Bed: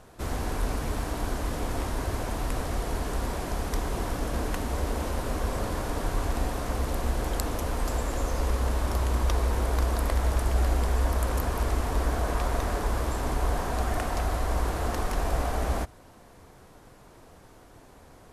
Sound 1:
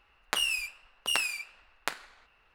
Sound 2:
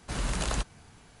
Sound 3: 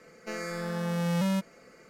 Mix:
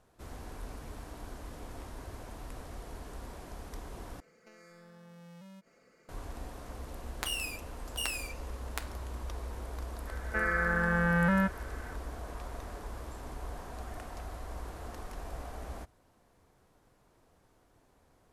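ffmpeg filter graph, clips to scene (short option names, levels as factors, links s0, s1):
-filter_complex "[3:a]asplit=2[s0][s1];[0:a]volume=0.188[s2];[s0]acompressor=threshold=0.00708:ratio=6:attack=3.2:release=140:knee=1:detection=peak[s3];[1:a]highshelf=f=8200:g=10.5[s4];[s1]lowpass=f=1600:t=q:w=7[s5];[s2]asplit=2[s6][s7];[s6]atrim=end=4.204[s8];[s3]atrim=end=1.89,asetpts=PTS-STARTPTS,volume=0.316[s9];[s7]atrim=start=6.086[s10];[s4]atrim=end=2.54,asetpts=PTS-STARTPTS,volume=0.376,afade=t=in:d=0.004:c=hsin,afade=t=out:st=2.536:d=0.004:c=hsin,adelay=304290S[s11];[s5]atrim=end=1.89,asetpts=PTS-STARTPTS,volume=0.944,afade=t=in:d=0.004:c=hsin,afade=t=out:st=1.886:d=0.004:c=hsin,adelay=10070[s12];[s8][s9]acrossfade=d=0.004:c1=hsin:c2=hsin[s13];[s13][s10]acrossfade=d=0.004:c1=hsin:c2=hsin[s14];[s14][s11][s12]amix=inputs=3:normalize=0"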